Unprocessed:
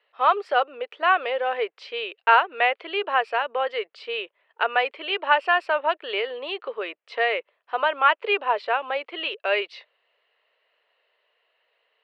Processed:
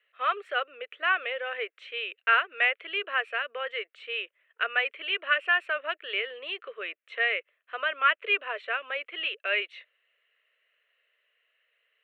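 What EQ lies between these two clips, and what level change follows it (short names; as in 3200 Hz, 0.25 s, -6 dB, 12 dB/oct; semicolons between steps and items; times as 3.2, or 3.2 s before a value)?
HPF 600 Hz 12 dB/oct; fixed phaser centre 2100 Hz, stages 4; 0.0 dB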